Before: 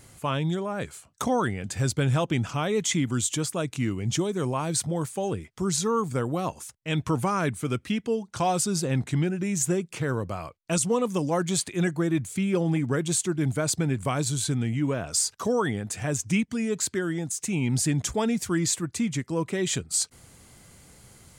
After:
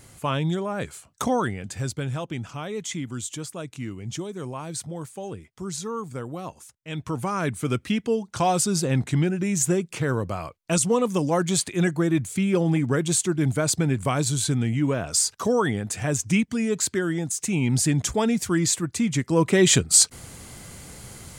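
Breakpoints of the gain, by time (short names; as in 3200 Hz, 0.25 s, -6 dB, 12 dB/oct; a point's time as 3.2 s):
1.28 s +2 dB
2.14 s -6 dB
6.9 s -6 dB
7.68 s +3 dB
19.02 s +3 dB
19.57 s +10 dB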